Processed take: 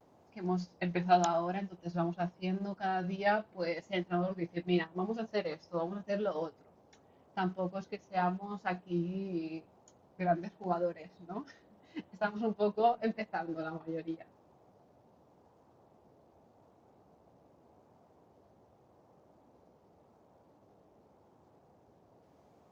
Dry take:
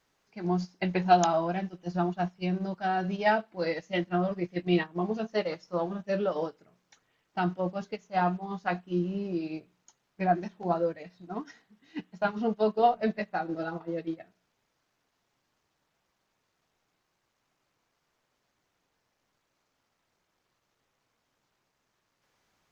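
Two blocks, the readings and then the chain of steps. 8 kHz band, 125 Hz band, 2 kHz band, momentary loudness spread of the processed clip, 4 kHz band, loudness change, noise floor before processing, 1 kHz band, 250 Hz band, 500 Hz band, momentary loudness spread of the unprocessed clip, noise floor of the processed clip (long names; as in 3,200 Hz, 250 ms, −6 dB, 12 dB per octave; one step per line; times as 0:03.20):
can't be measured, −5.0 dB, −5.0 dB, 13 LU, −5.0 dB, −5.0 dB, −78 dBFS, −5.5 dB, −5.0 dB, −5.0 dB, 14 LU, −65 dBFS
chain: noise in a band 70–820 Hz −59 dBFS
pitch vibrato 0.85 Hz 60 cents
level −5 dB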